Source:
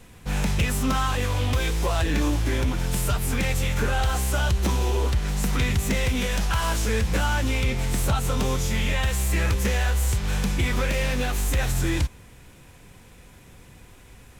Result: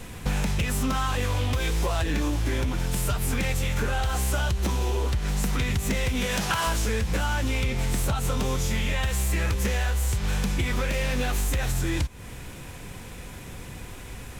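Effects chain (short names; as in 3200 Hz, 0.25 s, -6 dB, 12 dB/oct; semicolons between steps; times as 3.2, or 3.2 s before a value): 6.24–6.66 HPF 65 Hz -> 200 Hz 12 dB/oct; compressor 12:1, threshold -31 dBFS, peak gain reduction 13.5 dB; gain +9 dB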